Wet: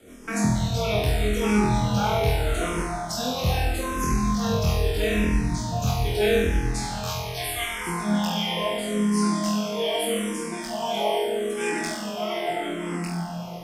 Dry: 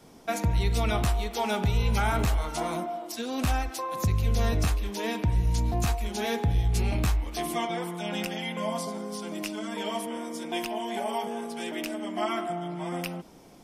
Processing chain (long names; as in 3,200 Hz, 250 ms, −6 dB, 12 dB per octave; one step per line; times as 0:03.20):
0:06.66–0:07.87: high-pass filter 770 Hz 24 dB per octave
in parallel at +3 dB: brickwall limiter −23.5 dBFS, peak gain reduction 7.5 dB
on the sum: rotating-speaker cabinet horn 6.7 Hz, later 1.2 Hz, at 0:07.25
on a send: flutter between parallel walls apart 4.1 metres, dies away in 0.9 s
on the sum: dense smooth reverb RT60 5 s, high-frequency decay 0.75×, DRR 6.5 dB
frequency shifter mixed with the dry sound −0.79 Hz